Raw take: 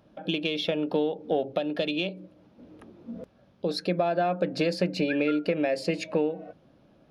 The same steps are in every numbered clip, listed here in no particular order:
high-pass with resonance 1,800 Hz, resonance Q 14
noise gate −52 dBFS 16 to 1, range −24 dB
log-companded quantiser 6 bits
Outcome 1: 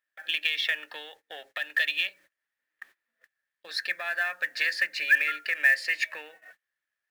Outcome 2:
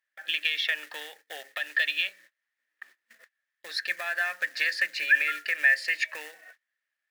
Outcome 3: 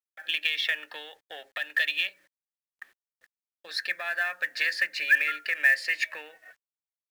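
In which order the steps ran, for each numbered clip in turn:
high-pass with resonance, then log-companded quantiser, then noise gate
log-companded quantiser, then high-pass with resonance, then noise gate
high-pass with resonance, then noise gate, then log-companded quantiser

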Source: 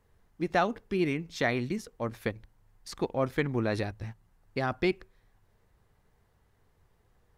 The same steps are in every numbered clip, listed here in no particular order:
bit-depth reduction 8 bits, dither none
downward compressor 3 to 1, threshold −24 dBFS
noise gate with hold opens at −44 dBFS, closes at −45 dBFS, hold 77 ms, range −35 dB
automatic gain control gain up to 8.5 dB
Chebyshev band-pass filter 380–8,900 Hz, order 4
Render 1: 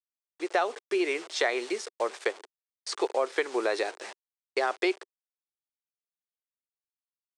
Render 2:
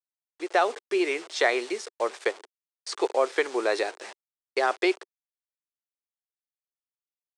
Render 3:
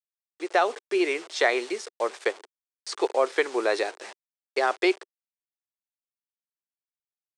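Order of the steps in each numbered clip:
bit-depth reduction, then Chebyshev band-pass filter, then noise gate with hold, then automatic gain control, then downward compressor
downward compressor, then bit-depth reduction, then Chebyshev band-pass filter, then noise gate with hold, then automatic gain control
noise gate with hold, then bit-depth reduction, then Chebyshev band-pass filter, then downward compressor, then automatic gain control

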